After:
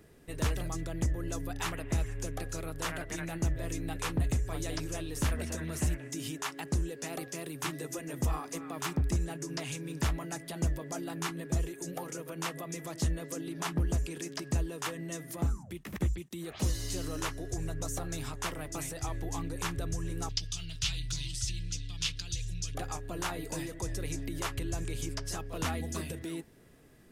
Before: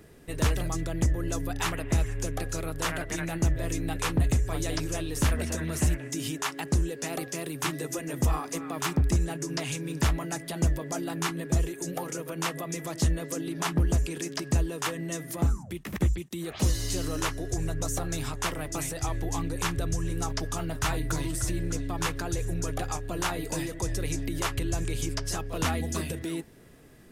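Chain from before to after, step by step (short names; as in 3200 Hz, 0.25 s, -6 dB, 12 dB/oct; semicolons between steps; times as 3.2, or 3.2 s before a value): 20.29–22.75 EQ curve 120 Hz 0 dB, 300 Hz -17 dB, 810 Hz -21 dB, 1700 Hz -10 dB, 3000 Hz +10 dB, 5100 Hz +10 dB, 13000 Hz -11 dB; gain -5.5 dB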